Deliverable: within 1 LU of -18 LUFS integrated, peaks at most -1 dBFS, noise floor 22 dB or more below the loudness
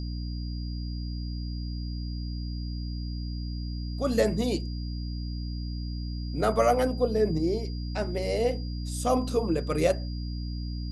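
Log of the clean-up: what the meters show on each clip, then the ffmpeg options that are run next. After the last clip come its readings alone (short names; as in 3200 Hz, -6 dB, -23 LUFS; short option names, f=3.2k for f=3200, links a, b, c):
hum 60 Hz; harmonics up to 300 Hz; hum level -31 dBFS; steady tone 4800 Hz; tone level -46 dBFS; loudness -30.0 LUFS; peak -10.5 dBFS; loudness target -18.0 LUFS
-> -af "bandreject=f=60:t=h:w=4,bandreject=f=120:t=h:w=4,bandreject=f=180:t=h:w=4,bandreject=f=240:t=h:w=4,bandreject=f=300:t=h:w=4"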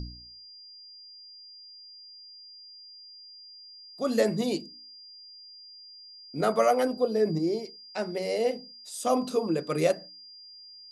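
hum none; steady tone 4800 Hz; tone level -46 dBFS
-> -af "bandreject=f=4.8k:w=30"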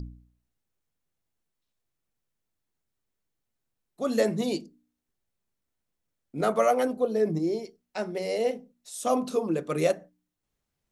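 steady tone none; loudness -28.0 LUFS; peak -11.5 dBFS; loudness target -18.0 LUFS
-> -af "volume=10dB"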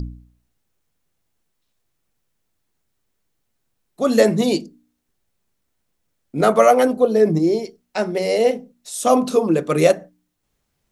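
loudness -18.0 LUFS; peak -1.5 dBFS; noise floor -73 dBFS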